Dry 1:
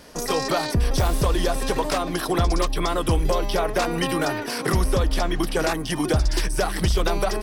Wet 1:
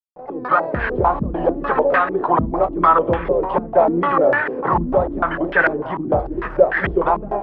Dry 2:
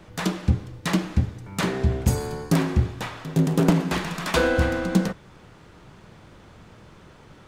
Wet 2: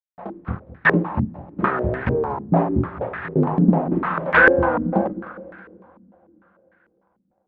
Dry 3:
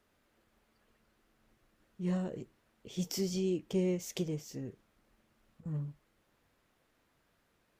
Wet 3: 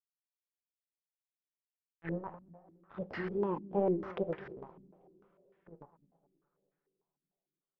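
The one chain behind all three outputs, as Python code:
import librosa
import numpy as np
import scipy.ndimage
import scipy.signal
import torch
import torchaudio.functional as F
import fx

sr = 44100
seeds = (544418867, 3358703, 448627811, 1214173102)

p1 = fx.fade_in_head(x, sr, length_s=0.88)
p2 = fx.tilt_eq(p1, sr, slope=3.5)
p3 = fx.hum_notches(p2, sr, base_hz=50, count=10)
p4 = fx.rider(p3, sr, range_db=3, speed_s=2.0)
p5 = p3 + (p4 * 10.0 ** (2.5 / 20.0))
p6 = np.sign(p5) * np.maximum(np.abs(p5) - 10.0 ** (-35.0 / 20.0), 0.0)
p7 = fx.wow_flutter(p6, sr, seeds[0], rate_hz=2.1, depth_cents=120.0)
p8 = fx.fold_sine(p7, sr, drive_db=8, ceiling_db=3.5)
p9 = fx.air_absorb(p8, sr, metres=420.0)
p10 = p9 + fx.echo_feedback(p9, sr, ms=210, feedback_pct=45, wet_db=-16.0, dry=0)
p11 = fx.rev_double_slope(p10, sr, seeds[1], early_s=0.26, late_s=4.1, knee_db=-21, drr_db=9.5)
p12 = fx.filter_held_lowpass(p11, sr, hz=6.7, low_hz=240.0, high_hz=1700.0)
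y = p12 * 10.0 ** (-11.0 / 20.0)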